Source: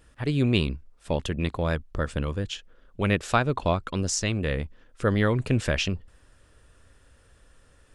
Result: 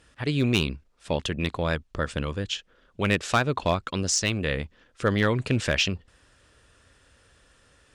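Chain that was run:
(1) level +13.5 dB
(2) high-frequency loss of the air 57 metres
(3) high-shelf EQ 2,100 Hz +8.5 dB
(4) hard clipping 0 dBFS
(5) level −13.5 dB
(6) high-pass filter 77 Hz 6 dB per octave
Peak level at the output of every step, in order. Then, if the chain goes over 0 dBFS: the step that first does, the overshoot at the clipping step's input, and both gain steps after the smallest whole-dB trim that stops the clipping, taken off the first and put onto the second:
+6.5, +6.0, +9.5, 0.0, −13.5, −11.0 dBFS
step 1, 9.5 dB
step 1 +3.5 dB, step 5 −3.5 dB

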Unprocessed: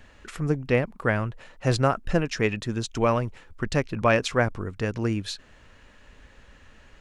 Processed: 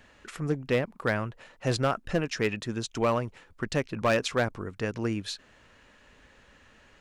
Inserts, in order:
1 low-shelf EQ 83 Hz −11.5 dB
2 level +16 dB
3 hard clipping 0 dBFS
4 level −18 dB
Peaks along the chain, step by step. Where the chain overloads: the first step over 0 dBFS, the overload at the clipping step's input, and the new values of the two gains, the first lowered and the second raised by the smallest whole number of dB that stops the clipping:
−8.0, +8.0, 0.0, −18.0 dBFS
step 2, 8.0 dB
step 2 +8 dB, step 4 −10 dB

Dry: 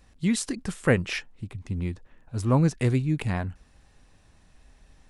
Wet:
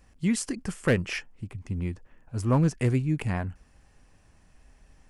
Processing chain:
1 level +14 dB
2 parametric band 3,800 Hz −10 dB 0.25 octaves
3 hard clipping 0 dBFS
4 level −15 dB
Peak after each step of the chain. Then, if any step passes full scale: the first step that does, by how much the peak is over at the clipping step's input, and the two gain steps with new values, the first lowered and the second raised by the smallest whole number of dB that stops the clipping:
+5.5, +5.5, 0.0, −15.0 dBFS
step 1, 5.5 dB
step 1 +8 dB, step 4 −9 dB

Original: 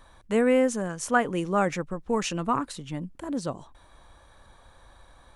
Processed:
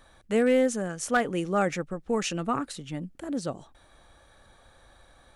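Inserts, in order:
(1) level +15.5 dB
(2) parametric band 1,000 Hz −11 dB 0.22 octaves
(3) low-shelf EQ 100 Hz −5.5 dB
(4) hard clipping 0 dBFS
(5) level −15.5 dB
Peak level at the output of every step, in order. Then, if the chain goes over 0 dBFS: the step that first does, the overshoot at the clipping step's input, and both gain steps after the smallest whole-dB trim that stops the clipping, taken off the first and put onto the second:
+7.0, +6.5, +6.0, 0.0, −15.5 dBFS
step 1, 6.0 dB
step 1 +9.5 dB, step 5 −9.5 dB

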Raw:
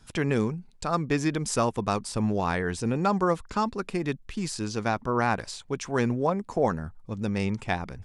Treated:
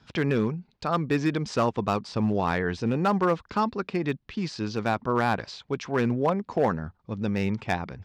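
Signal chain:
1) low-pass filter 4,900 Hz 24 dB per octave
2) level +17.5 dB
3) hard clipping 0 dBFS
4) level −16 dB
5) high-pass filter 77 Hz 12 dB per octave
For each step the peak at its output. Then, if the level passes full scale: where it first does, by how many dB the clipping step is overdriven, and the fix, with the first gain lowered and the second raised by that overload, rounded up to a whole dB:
−11.0, +6.5, 0.0, −16.0, −13.0 dBFS
step 2, 6.5 dB
step 2 +10.5 dB, step 4 −9 dB

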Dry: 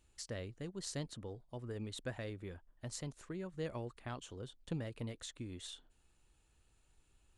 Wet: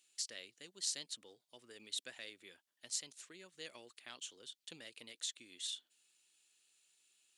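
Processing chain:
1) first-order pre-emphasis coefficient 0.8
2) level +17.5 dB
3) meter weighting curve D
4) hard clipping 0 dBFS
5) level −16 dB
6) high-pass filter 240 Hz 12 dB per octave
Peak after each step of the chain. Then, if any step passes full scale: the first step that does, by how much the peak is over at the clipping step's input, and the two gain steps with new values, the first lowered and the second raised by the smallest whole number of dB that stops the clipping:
−26.5, −9.0, −2.0, −2.0, −18.0, −18.0 dBFS
no step passes full scale

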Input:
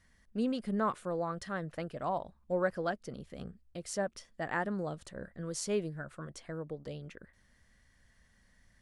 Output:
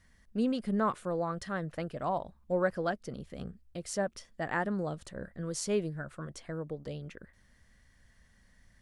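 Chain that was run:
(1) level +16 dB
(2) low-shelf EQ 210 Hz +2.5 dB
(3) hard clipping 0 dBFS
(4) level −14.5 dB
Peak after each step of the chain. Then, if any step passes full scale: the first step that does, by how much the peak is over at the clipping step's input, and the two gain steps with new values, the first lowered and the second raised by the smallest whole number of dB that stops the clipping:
−3.5, −2.5, −2.5, −17.0 dBFS
no step passes full scale

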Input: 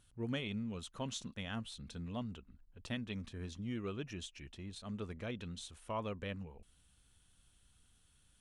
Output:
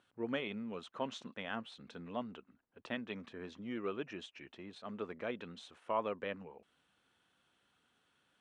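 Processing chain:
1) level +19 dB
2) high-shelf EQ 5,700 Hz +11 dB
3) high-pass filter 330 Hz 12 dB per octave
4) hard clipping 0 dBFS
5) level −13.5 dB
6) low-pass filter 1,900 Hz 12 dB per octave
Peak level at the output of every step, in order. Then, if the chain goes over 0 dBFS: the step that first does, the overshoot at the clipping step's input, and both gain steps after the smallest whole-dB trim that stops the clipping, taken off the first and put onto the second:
−7.5, −7.0, −5.5, −5.5, −19.0, −21.5 dBFS
no step passes full scale

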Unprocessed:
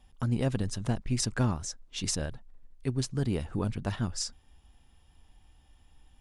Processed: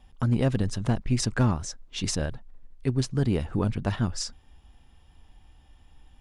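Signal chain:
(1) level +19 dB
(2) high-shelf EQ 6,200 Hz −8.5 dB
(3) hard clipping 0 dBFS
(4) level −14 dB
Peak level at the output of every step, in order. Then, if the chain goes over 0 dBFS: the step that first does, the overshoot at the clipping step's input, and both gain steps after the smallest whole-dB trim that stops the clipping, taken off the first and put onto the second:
+3.5, +3.5, 0.0, −14.0 dBFS
step 1, 3.5 dB
step 1 +15 dB, step 4 −10 dB

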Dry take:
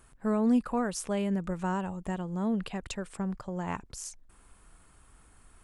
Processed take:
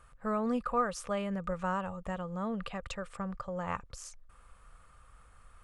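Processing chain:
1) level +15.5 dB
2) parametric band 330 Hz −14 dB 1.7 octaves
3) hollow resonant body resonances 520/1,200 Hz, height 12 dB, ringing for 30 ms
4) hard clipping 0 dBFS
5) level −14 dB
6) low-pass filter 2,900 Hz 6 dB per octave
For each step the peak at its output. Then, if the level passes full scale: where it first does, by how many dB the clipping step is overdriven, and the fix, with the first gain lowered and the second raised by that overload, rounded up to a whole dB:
−1.0, −7.0, −4.0, −4.0, −18.0, −18.5 dBFS
no step passes full scale

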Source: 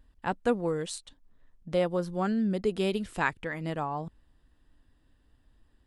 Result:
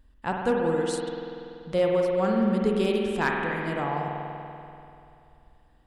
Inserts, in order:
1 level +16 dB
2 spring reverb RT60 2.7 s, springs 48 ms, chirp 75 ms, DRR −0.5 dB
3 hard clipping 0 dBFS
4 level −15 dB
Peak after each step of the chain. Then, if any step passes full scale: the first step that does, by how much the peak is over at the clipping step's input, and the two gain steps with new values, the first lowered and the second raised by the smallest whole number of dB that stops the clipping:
+4.0, +5.5, 0.0, −15.0 dBFS
step 1, 5.5 dB
step 1 +10 dB, step 4 −9 dB

